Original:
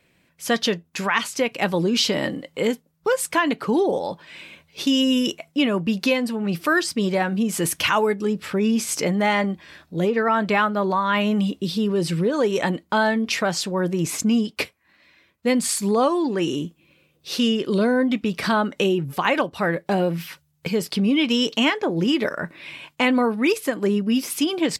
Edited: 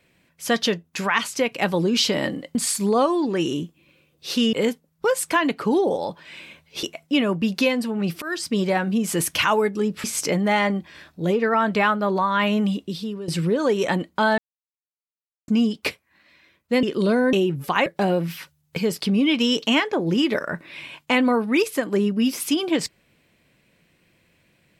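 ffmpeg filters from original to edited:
ffmpeg -i in.wav -filter_complex "[0:a]asplit=12[link_01][link_02][link_03][link_04][link_05][link_06][link_07][link_08][link_09][link_10][link_11][link_12];[link_01]atrim=end=2.552[link_13];[link_02]atrim=start=15.568:end=17.552[link_14];[link_03]atrim=start=2.548:end=4.852[link_15];[link_04]atrim=start=5.278:end=6.67,asetpts=PTS-STARTPTS,afade=type=out:start_time=1.388:duration=0.004:curve=hsin:silence=0.105925[link_16];[link_05]atrim=start=6.67:end=8.492,asetpts=PTS-STARTPTS,afade=type=in:duration=0.29:silence=0.105925[link_17];[link_06]atrim=start=8.778:end=12.02,asetpts=PTS-STARTPTS,afade=type=out:start_time=2.552:duration=0.69:silence=0.199526[link_18];[link_07]atrim=start=12.02:end=13.12,asetpts=PTS-STARTPTS,afade=type=in:duration=0.004:curve=hsin:silence=0.199526,afade=type=out:start_time=1.096:duration=0.004:curve=hsin[link_19];[link_08]atrim=start=13.12:end=14.22,asetpts=PTS-STARTPTS,volume=0[link_20];[link_09]atrim=start=14.22:end=15.572,asetpts=PTS-STARTPTS,afade=type=in:duration=0.004:curve=hsin[link_21];[link_10]atrim=start=17.548:end=18.052[link_22];[link_11]atrim=start=18.818:end=19.352[link_23];[link_12]atrim=start=19.758[link_24];[link_13][link_14]acrossfade=duration=0.004:curve1=hsin:curve2=hsin[link_25];[link_25][link_15]acrossfade=duration=0.004:curve1=hsin:curve2=hsin[link_26];[link_16][link_17]concat=n=2:v=0:a=1[link_27];[link_26][link_27]acrossfade=duration=0.004:curve1=hsin:curve2=hsin[link_28];[link_18][link_19][link_20][link_21]concat=n=4:v=0:a=1[link_29];[link_28][link_29]acrossfade=duration=0.004:curve1=hsin:curve2=hsin[link_30];[link_30][link_22]acrossfade=duration=0.004:curve1=hsin:curve2=hsin[link_31];[link_31][link_23]acrossfade=duration=0.004:curve1=hsin:curve2=hsin[link_32];[link_32][link_24]acrossfade=duration=0.004:curve1=hsin:curve2=hsin" out.wav

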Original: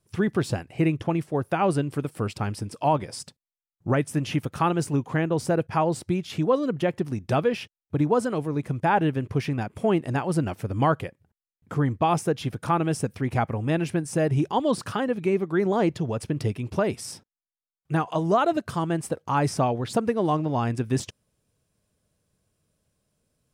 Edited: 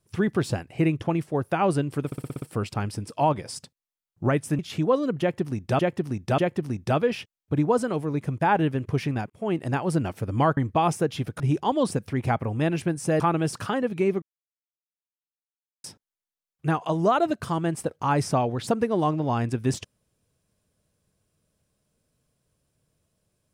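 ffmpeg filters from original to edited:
ffmpeg -i in.wav -filter_complex "[0:a]asplit=18[link_01][link_02][link_03][link_04][link_05][link_06][link_07][link_08][link_09][link_10][link_11][link_12][link_13][link_14][link_15][link_16][link_17][link_18];[link_01]atrim=end=2.122[link_19];[link_02]atrim=start=2.058:end=2.122[link_20];[link_03]atrim=start=2.058:end=2.122[link_21];[link_04]atrim=start=2.058:end=2.122[link_22];[link_05]atrim=start=2.058:end=2.122[link_23];[link_06]atrim=start=2.058:end=2.122[link_24];[link_07]atrim=start=2.058:end=4.232[link_25];[link_08]atrim=start=6.188:end=7.392[link_26];[link_09]atrim=start=6.798:end=7.392[link_27];[link_10]atrim=start=6.798:end=9.72,asetpts=PTS-STARTPTS,afade=type=out:start_time=2.918:duration=0.004:curve=hsin[link_28];[link_11]atrim=start=9.72:end=10.992,asetpts=PTS-STARTPTS,afade=type=in:duration=0.33[link_29];[link_12]atrim=start=11.828:end=12.662[link_30];[link_13]atrim=start=14.278:end=14.792[link_31];[link_14]atrim=start=12.988:end=14.282[link_32];[link_15]atrim=start=12.658:end=12.992[link_33];[link_16]atrim=start=14.788:end=15.48,asetpts=PTS-STARTPTS,afade=type=out:start_time=0.688:duration=0.004:curve=hsin[link_34];[link_17]atrim=start=15.48:end=17.1,asetpts=PTS-STARTPTS,volume=0[link_35];[link_18]atrim=start=17.1,asetpts=PTS-STARTPTS,afade=type=in:duration=0.004:curve=hsin[link_36];[link_19][link_20]acrossfade=duration=0.004:curve1=hsin:curve2=hsin[link_37];[link_37][link_21]acrossfade=duration=0.004:curve1=hsin:curve2=hsin[link_38];[link_38][link_22]acrossfade=duration=0.004:curve1=hsin:curve2=hsin[link_39];[link_39][link_23]acrossfade=duration=0.004:curve1=hsin:curve2=hsin[link_40];[link_40][link_24]acrossfade=duration=0.004:curve1=hsin:curve2=hsin[link_41];[link_41][link_25]acrossfade=duration=0.004:curve1=hsin:curve2=hsin[link_42];[link_42][link_26]acrossfade=duration=0.004:curve1=hsin:curve2=hsin[link_43];[link_43][link_27]acrossfade=duration=0.004:curve1=hsin:curve2=hsin[link_44];[link_28][link_29]concat=n=2:v=0:a=1[link_45];[link_44][link_45]acrossfade=duration=0.004:curve1=hsin:curve2=hsin[link_46];[link_46][link_30]acrossfade=duration=0.004:curve1=hsin:curve2=hsin[link_47];[link_47][link_31]acrossfade=duration=0.004:curve1=hsin:curve2=hsin[link_48];[link_48][link_32]acrossfade=duration=0.004:curve1=hsin:curve2=hsin[link_49];[link_49][link_33]acrossfade=duration=0.004:curve1=hsin:curve2=hsin[link_50];[link_34][link_35][link_36]concat=n=3:v=0:a=1[link_51];[link_50][link_51]acrossfade=duration=0.004:curve1=hsin:curve2=hsin" out.wav

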